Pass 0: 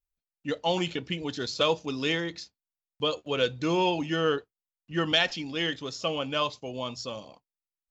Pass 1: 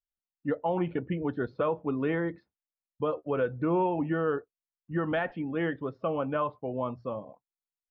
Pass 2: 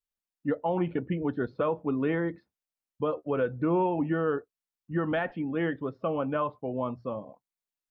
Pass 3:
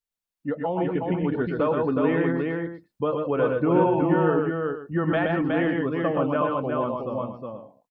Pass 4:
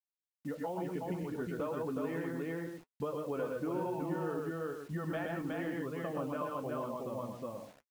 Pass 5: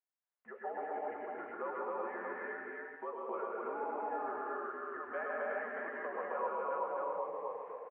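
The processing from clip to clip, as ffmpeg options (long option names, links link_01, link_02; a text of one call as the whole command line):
ffmpeg -i in.wav -af "afftdn=noise_reduction=14:noise_floor=-45,lowpass=frequency=1600:width=0.5412,lowpass=frequency=1600:width=1.3066,alimiter=limit=-22dB:level=0:latency=1:release=170,volume=3dB" out.wav
ffmpeg -i in.wav -af "equalizer=frequency=240:width=1.5:gain=2.5" out.wav
ffmpeg -i in.wav -af "dynaudnorm=framelen=260:gausssize=9:maxgain=3.5dB,aecho=1:1:105|118|124|367|479:0.224|0.15|0.631|0.668|0.211" out.wav
ffmpeg -i in.wav -af "acompressor=threshold=-33dB:ratio=3,acrusher=bits=8:mix=0:aa=0.000001,flanger=delay=4.5:depth=7.3:regen=-57:speed=1:shape=sinusoidal" out.wav
ffmpeg -i in.wav -filter_complex "[0:a]asplit=2[link_01][link_02];[link_02]aecho=0:1:186.6|265.3:0.562|0.891[link_03];[link_01][link_03]amix=inputs=2:normalize=0,highpass=frequency=600:width_type=q:width=0.5412,highpass=frequency=600:width_type=q:width=1.307,lowpass=frequency=2100:width_type=q:width=0.5176,lowpass=frequency=2100:width_type=q:width=0.7071,lowpass=frequency=2100:width_type=q:width=1.932,afreqshift=-68,asplit=2[link_04][link_05];[link_05]aecho=0:1:160:0.355[link_06];[link_04][link_06]amix=inputs=2:normalize=0,volume=1dB" out.wav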